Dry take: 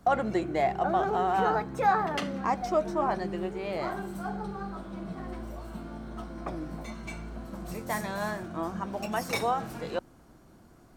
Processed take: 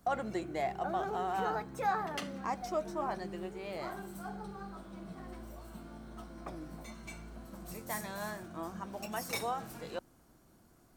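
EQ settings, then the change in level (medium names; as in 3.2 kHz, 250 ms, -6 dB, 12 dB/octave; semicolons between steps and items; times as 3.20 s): pre-emphasis filter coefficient 0.8; treble shelf 2.8 kHz -7.5 dB; +5.5 dB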